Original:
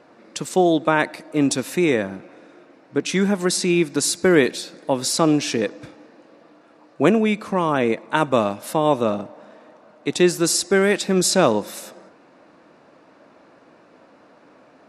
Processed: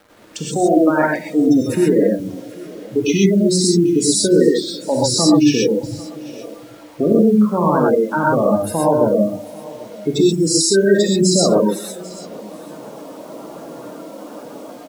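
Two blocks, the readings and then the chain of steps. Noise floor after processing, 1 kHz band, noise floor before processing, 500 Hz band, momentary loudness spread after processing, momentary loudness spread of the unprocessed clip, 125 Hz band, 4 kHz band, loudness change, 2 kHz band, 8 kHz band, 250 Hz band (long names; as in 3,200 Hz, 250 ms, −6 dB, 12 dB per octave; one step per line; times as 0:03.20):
−38 dBFS, +2.0 dB, −53 dBFS, +5.0 dB, 21 LU, 11 LU, +6.0 dB, +4.0 dB, +4.5 dB, −2.0 dB, +4.0 dB, +6.0 dB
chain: hum removal 46.78 Hz, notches 8
gate on every frequency bin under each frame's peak −10 dB strong
parametric band 78 Hz +11 dB 1.9 octaves
in parallel at −1.5 dB: downward compressor 6 to 1, threshold −29 dBFS, peak gain reduction 17.5 dB
on the sum: brickwall limiter −9 dBFS, peak gain reduction 6.5 dB
automatic gain control gain up to 16 dB
bit reduction 7 bits
on a send: single-tap delay 792 ms −20.5 dB
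on the sum: reverb whose tail is shaped and stops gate 150 ms rising, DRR −3 dB
level −7.5 dB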